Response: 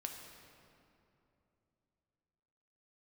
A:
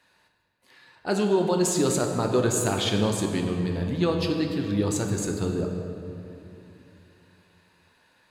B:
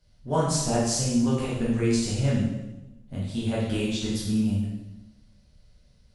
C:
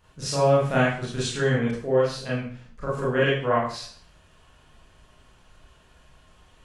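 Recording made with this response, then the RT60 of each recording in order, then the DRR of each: A; 2.9, 1.0, 0.50 seconds; 2.0, −7.5, −8.5 decibels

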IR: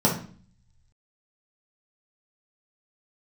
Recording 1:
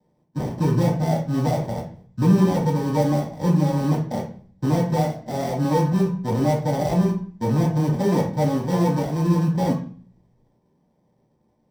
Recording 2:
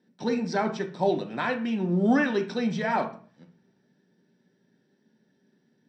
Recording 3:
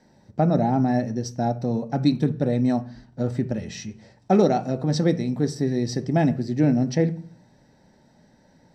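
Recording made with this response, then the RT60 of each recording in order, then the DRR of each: 1; 0.45, 0.45, 0.45 seconds; −4.5, 3.5, 9.5 decibels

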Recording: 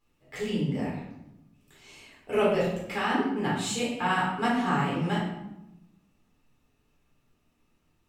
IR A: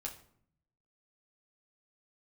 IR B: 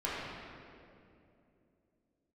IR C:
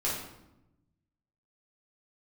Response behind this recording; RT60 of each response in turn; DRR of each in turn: C; non-exponential decay, 2.7 s, 0.90 s; −1.0, −9.0, −7.0 decibels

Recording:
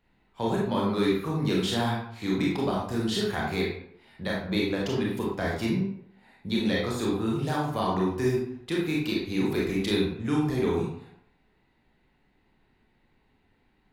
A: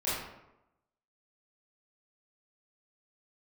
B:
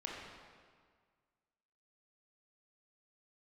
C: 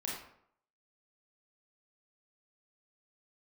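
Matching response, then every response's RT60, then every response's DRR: C; 0.90, 1.8, 0.65 seconds; −11.5, −3.5, −4.5 decibels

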